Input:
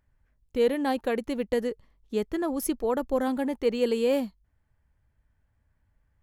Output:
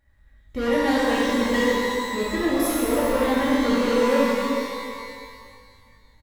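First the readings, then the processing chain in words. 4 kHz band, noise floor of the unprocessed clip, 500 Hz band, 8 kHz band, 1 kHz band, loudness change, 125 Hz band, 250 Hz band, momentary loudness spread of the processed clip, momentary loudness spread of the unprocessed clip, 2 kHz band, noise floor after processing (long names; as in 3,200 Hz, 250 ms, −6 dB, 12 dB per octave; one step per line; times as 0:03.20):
+10.5 dB, −72 dBFS, +4.5 dB, +8.0 dB, +9.5 dB, +6.0 dB, can't be measured, +7.0 dB, 12 LU, 8 LU, +13.0 dB, −56 dBFS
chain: hollow resonant body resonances 1,900/3,800 Hz, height 17 dB, ringing for 35 ms
soft clipping −26 dBFS, distortion −9 dB
comb filter 3.6 ms, depth 40%
reverb with rising layers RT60 2.1 s, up +12 semitones, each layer −8 dB, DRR −8 dB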